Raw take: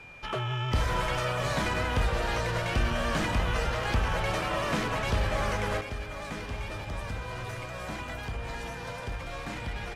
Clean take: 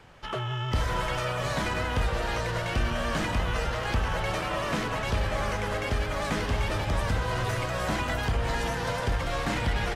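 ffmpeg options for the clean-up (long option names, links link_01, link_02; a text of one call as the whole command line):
ffmpeg -i in.wav -af "bandreject=frequency=2400:width=30,asetnsamples=nb_out_samples=441:pad=0,asendcmd='5.81 volume volume 8.5dB',volume=0dB" out.wav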